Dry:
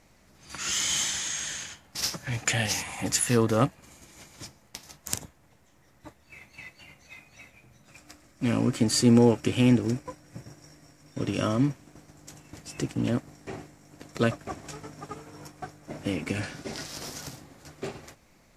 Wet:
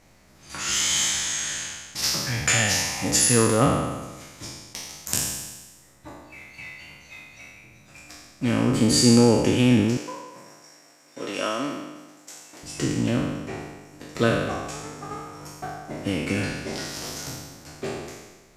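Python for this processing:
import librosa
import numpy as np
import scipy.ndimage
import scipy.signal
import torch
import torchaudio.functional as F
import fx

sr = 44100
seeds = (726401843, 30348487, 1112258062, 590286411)

y = fx.spec_trails(x, sr, decay_s=1.26)
y = fx.highpass(y, sr, hz=440.0, slope=12, at=(9.97, 12.63))
y = y * librosa.db_to_amplitude(1.5)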